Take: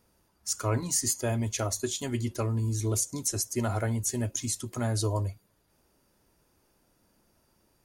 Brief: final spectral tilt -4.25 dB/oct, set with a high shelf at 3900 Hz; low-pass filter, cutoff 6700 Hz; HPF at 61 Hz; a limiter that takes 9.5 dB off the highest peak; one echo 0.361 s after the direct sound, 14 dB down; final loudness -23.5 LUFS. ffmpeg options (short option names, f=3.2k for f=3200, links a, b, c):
-af "highpass=61,lowpass=6.7k,highshelf=f=3.9k:g=7.5,alimiter=limit=-21.5dB:level=0:latency=1,aecho=1:1:361:0.2,volume=8dB"